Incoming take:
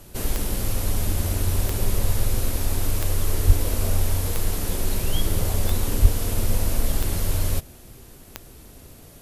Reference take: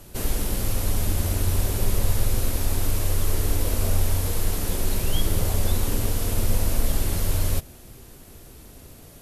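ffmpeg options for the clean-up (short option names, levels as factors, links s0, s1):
-filter_complex "[0:a]adeclick=t=4,asplit=3[s0][s1][s2];[s0]afade=t=out:st=3.46:d=0.02[s3];[s1]highpass=f=140:w=0.5412,highpass=f=140:w=1.3066,afade=t=in:st=3.46:d=0.02,afade=t=out:st=3.58:d=0.02[s4];[s2]afade=t=in:st=3.58:d=0.02[s5];[s3][s4][s5]amix=inputs=3:normalize=0,asplit=3[s6][s7][s8];[s6]afade=t=out:st=6.01:d=0.02[s9];[s7]highpass=f=140:w=0.5412,highpass=f=140:w=1.3066,afade=t=in:st=6.01:d=0.02,afade=t=out:st=6.13:d=0.02[s10];[s8]afade=t=in:st=6.13:d=0.02[s11];[s9][s10][s11]amix=inputs=3:normalize=0"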